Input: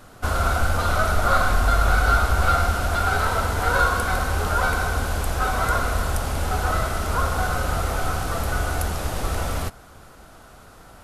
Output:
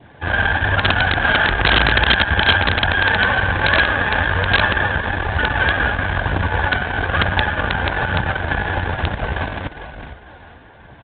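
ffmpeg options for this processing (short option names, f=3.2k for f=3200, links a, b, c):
-filter_complex "[0:a]adynamicequalizer=threshold=0.0178:dfrequency=1300:dqfactor=2.2:tfrequency=1300:tqfactor=2.2:attack=5:release=100:ratio=0.375:range=2.5:mode=boostabove:tftype=bell,aeval=exprs='0.631*(cos(1*acos(clip(val(0)/0.631,-1,1)))-cos(1*PI/2))+0.141*(cos(5*acos(clip(val(0)/0.631,-1,1)))-cos(5*PI/2))':c=same,asplit=5[a][b][c][d][e];[b]adelay=443,afreqshift=-38,volume=-8.5dB[f];[c]adelay=886,afreqshift=-76,volume=-18.4dB[g];[d]adelay=1329,afreqshift=-114,volume=-28.3dB[h];[e]adelay=1772,afreqshift=-152,volume=-38.2dB[i];[a][f][g][h][i]amix=inputs=5:normalize=0,asetrate=50951,aresample=44100,atempo=0.865537,aphaser=in_gain=1:out_gain=1:delay=5:decay=0.29:speed=1.1:type=triangular,bandreject=f=1.3k:w=5.1,aeval=exprs='0.841*(cos(1*acos(clip(val(0)/0.841,-1,1)))-cos(1*PI/2))+0.15*(cos(3*acos(clip(val(0)/0.841,-1,1)))-cos(3*PI/2))+0.0531*(cos(6*acos(clip(val(0)/0.841,-1,1)))-cos(6*PI/2))':c=same,aresample=8000,aeval=exprs='(mod(2*val(0)+1,2)-1)/2':c=same,aresample=44100,highpass=62,alimiter=level_in=4dB:limit=-1dB:release=50:level=0:latency=1,volume=-1dB"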